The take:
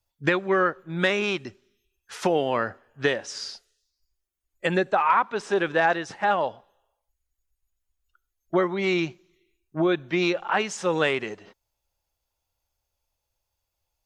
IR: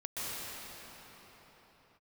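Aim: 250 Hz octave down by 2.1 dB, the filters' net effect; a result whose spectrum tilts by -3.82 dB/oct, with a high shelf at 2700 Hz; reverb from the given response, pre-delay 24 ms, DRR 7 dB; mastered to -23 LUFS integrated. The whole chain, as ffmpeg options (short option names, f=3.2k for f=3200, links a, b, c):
-filter_complex "[0:a]equalizer=f=250:t=o:g=-4,highshelf=f=2.7k:g=4.5,asplit=2[a][b];[1:a]atrim=start_sample=2205,adelay=24[c];[b][c]afir=irnorm=-1:irlink=0,volume=-12dB[d];[a][d]amix=inputs=2:normalize=0,volume=2dB"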